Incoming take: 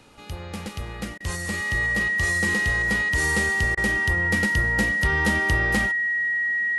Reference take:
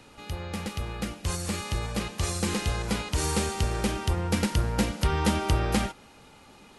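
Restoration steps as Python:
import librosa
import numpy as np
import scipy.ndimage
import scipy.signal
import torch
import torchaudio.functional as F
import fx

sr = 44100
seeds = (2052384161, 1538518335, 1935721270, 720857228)

y = fx.fix_declip(x, sr, threshold_db=-13.0)
y = fx.notch(y, sr, hz=1900.0, q=30.0)
y = fx.fix_interpolate(y, sr, at_s=(1.18, 3.75), length_ms=22.0)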